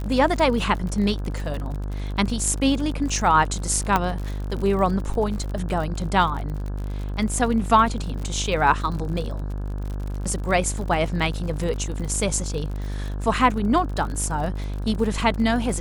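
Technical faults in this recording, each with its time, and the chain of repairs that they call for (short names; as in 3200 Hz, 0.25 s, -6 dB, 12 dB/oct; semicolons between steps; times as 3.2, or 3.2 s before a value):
buzz 50 Hz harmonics 34 -28 dBFS
crackle 56/s -30 dBFS
3.96 pop -6 dBFS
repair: de-click; de-hum 50 Hz, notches 34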